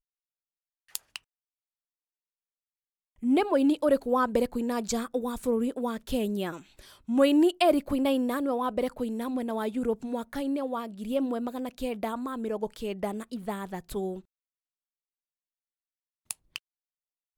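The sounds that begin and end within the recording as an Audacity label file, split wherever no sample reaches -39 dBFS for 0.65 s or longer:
0.950000	1.160000	sound
3.230000	14.190000	sound
16.310000	16.560000	sound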